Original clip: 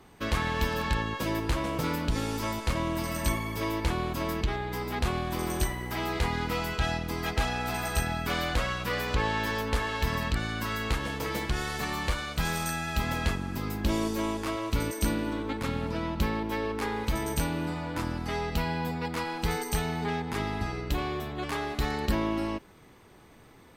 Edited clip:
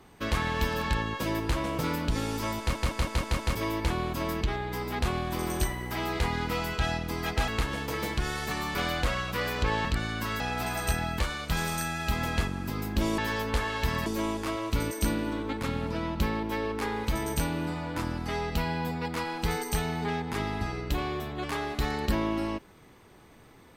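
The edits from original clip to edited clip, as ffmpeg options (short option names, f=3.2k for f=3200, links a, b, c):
-filter_complex "[0:a]asplit=14[a][b][c][d][e][f][g][h][i][j][k][l][m][n];[a]atrim=end=2.752[o];[b]atrim=start=2.588:end=2.752[p];[c]atrim=start=2.588:end=2.752[q];[d]atrim=start=2.588:end=2.752[r];[e]atrim=start=2.588:end=2.752[s];[f]atrim=start=2.588:end=2.752[t];[g]atrim=start=3.548:end=7.482[u];[h]atrim=start=10.798:end=12.072[v];[i]atrim=start=8.268:end=9.372[w];[j]atrim=start=10.248:end=10.802[x];[k]atrim=start=7.478:end=8.272[y];[l]atrim=start=12.068:end=14.062[z];[m]atrim=start=9.368:end=10.252[aa];[n]atrim=start=14.058[ab];[o][p]acrossfade=d=0.004:c1=hsin:c2=hsin[ac];[ac][q]acrossfade=d=0.004:c1=hsin:c2=hsin[ad];[ad][r]acrossfade=d=0.004:c1=hsin:c2=hsin[ae];[ae][s]acrossfade=d=0.004:c1=hsin:c2=hsin[af];[af][t]acrossfade=d=0.004:c1=hsin:c2=hsin[ag];[ag][u]acrossfade=d=0.004:c1=hsin:c2=hsin[ah];[ah][v]acrossfade=d=0.004:c1=hsin:c2=hsin[ai];[ai][w]acrossfade=d=0.004:c1=hsin:c2=hsin[aj];[aj][x]acrossfade=d=0.004:c1=hsin:c2=hsin[ak];[ak][y]acrossfade=d=0.004:c1=hsin:c2=hsin[al];[al][z]acrossfade=d=0.004:c1=hsin:c2=hsin[am];[am][aa]acrossfade=d=0.004:c1=hsin:c2=hsin[an];[an][ab]acrossfade=d=0.004:c1=hsin:c2=hsin"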